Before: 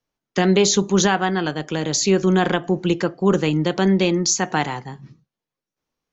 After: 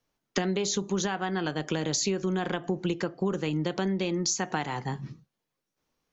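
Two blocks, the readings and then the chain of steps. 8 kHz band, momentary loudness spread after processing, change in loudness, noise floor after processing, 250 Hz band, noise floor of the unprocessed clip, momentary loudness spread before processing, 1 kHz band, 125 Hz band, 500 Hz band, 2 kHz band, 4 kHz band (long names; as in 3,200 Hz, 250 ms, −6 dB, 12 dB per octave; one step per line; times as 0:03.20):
can't be measured, 6 LU, −10.5 dB, −84 dBFS, −10.5 dB, below −85 dBFS, 8 LU, −10.0 dB, −9.5 dB, −10.5 dB, −10.0 dB, −9.5 dB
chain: downward compressor 10 to 1, threshold −28 dBFS, peak gain reduction 17 dB
level +3 dB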